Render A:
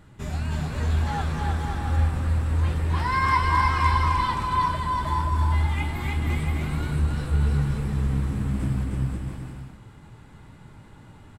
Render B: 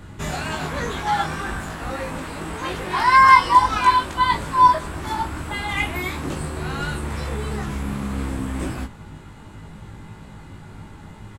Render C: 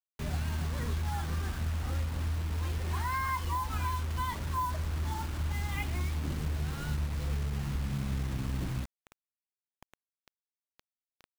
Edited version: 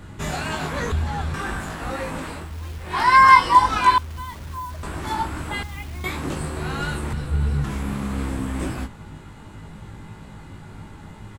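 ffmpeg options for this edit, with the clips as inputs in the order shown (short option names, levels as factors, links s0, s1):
-filter_complex "[0:a]asplit=2[s0][s1];[2:a]asplit=3[s2][s3][s4];[1:a]asplit=6[s5][s6][s7][s8][s9][s10];[s5]atrim=end=0.922[s11];[s0]atrim=start=0.918:end=1.342[s12];[s6]atrim=start=1.338:end=2.54[s13];[s2]atrim=start=2.3:end=3.01[s14];[s7]atrim=start=2.77:end=3.982[s15];[s3]atrim=start=3.978:end=4.832[s16];[s8]atrim=start=4.828:end=5.632[s17];[s4]atrim=start=5.628:end=6.042[s18];[s9]atrim=start=6.038:end=7.132[s19];[s1]atrim=start=7.128:end=7.642[s20];[s10]atrim=start=7.638[s21];[s11][s12]acrossfade=d=0.004:c1=hsin:c2=hsin[s22];[s22][s13]acrossfade=d=0.004:c1=hsin:c2=hsin[s23];[s23][s14]acrossfade=d=0.24:c1=tri:c2=tri[s24];[s24][s15]acrossfade=d=0.24:c1=tri:c2=tri[s25];[s25][s16]acrossfade=d=0.004:c1=hsin:c2=hsin[s26];[s26][s17]acrossfade=d=0.004:c1=hsin:c2=hsin[s27];[s27][s18]acrossfade=d=0.004:c1=hsin:c2=hsin[s28];[s28][s19]acrossfade=d=0.004:c1=hsin:c2=hsin[s29];[s29][s20]acrossfade=d=0.004:c1=hsin:c2=hsin[s30];[s30][s21]acrossfade=d=0.004:c1=hsin:c2=hsin"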